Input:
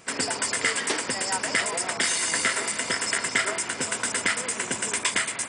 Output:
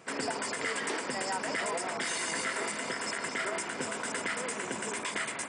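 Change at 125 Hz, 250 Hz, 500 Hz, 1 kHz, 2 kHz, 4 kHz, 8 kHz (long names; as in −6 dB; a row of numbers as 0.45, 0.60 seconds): −6.0, −3.5, −2.5, −4.0, −7.5, −9.5, −11.5 decibels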